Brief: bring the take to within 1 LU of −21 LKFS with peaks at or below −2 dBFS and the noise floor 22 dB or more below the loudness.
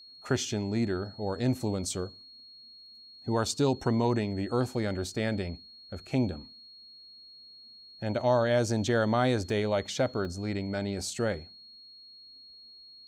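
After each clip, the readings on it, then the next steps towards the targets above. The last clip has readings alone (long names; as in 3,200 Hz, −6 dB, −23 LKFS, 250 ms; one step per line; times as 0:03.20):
number of dropouts 2; longest dropout 1.6 ms; interfering tone 4,300 Hz; level of the tone −49 dBFS; integrated loudness −30.0 LKFS; sample peak −14.0 dBFS; target loudness −21.0 LKFS
→ repair the gap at 0:09.50/0:10.25, 1.6 ms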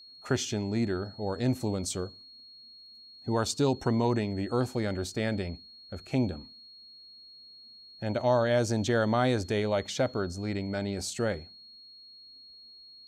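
number of dropouts 0; interfering tone 4,300 Hz; level of the tone −49 dBFS
→ notch filter 4,300 Hz, Q 30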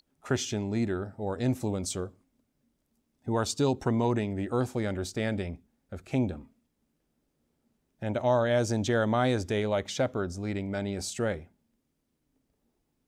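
interfering tone none found; integrated loudness −30.0 LKFS; sample peak −14.0 dBFS; target loudness −21.0 LKFS
→ level +9 dB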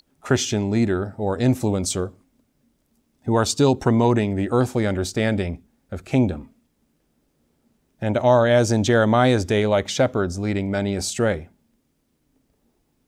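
integrated loudness −21.0 LKFS; sample peak −5.0 dBFS; background noise floor −69 dBFS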